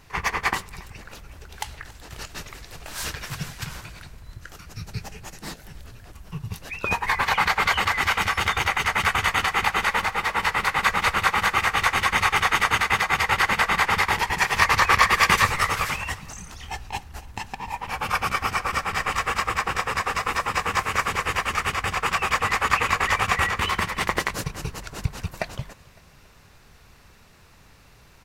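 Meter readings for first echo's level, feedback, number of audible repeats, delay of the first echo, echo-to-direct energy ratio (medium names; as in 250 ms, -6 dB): -22.0 dB, 46%, 2, 279 ms, -21.0 dB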